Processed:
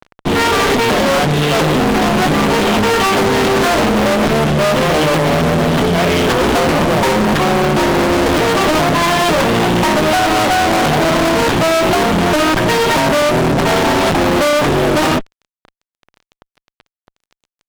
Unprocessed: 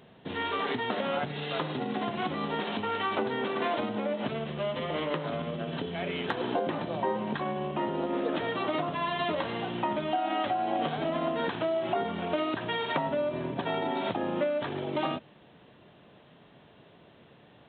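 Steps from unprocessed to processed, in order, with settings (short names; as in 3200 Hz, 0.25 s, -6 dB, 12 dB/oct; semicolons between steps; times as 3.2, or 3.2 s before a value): tilt shelf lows +4 dB; added harmonics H 4 -9 dB, 7 -22 dB, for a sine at -14.5 dBFS; fuzz box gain 45 dB, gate -51 dBFS; gain +2 dB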